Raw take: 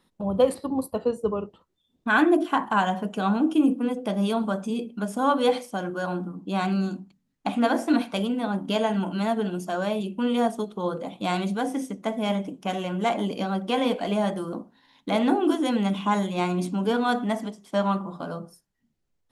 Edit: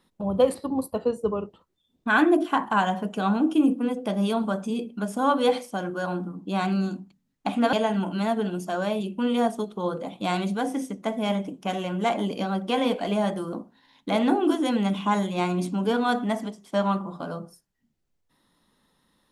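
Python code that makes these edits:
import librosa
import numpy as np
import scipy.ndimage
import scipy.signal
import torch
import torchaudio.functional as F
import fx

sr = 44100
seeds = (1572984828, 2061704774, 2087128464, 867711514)

y = fx.edit(x, sr, fx.cut(start_s=7.73, length_s=1.0), tone=tone)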